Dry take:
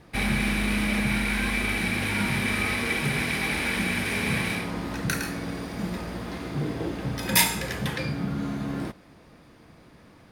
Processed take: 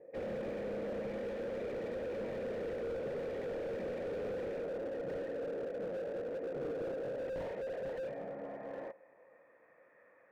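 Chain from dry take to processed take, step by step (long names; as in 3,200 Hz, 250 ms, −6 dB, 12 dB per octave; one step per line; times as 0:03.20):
band-pass filter sweep 490 Hz → 1,200 Hz, 0:06.85–0:09.83
formant resonators in series e
slew-rate limiting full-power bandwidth 1.5 Hz
level +13.5 dB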